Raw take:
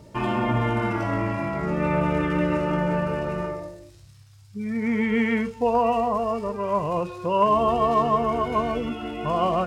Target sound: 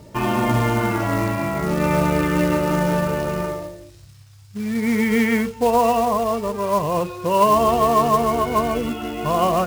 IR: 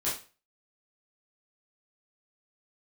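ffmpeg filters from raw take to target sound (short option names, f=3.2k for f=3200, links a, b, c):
-af "acrusher=bits=4:mode=log:mix=0:aa=0.000001,volume=4dB"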